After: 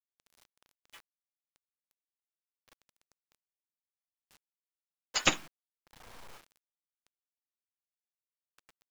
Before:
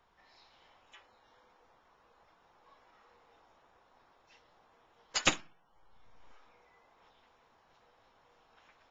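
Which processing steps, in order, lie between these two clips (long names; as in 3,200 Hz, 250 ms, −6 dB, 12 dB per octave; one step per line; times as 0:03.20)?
bit reduction 9 bits
level +1.5 dB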